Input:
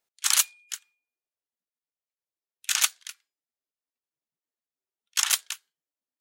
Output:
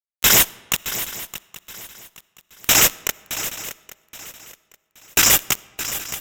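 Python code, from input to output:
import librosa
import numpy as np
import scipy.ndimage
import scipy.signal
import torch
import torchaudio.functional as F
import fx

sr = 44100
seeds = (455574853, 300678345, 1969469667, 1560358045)

p1 = fx.band_swap(x, sr, width_hz=4000)
p2 = fx.high_shelf(p1, sr, hz=10000.0, db=5.0)
p3 = fx.fuzz(p2, sr, gain_db=36.0, gate_db=-37.0)
p4 = p3 + fx.echo_swing(p3, sr, ms=824, ratio=3, feedback_pct=31, wet_db=-9.5, dry=0)
p5 = fx.rev_freeverb(p4, sr, rt60_s=1.5, hf_ratio=0.65, predelay_ms=25, drr_db=17.5)
p6 = fx.cheby_harmonics(p5, sr, harmonics=(7,), levels_db=(-25,), full_scale_db=-9.0)
y = p6 * 10.0 ** (2.5 / 20.0)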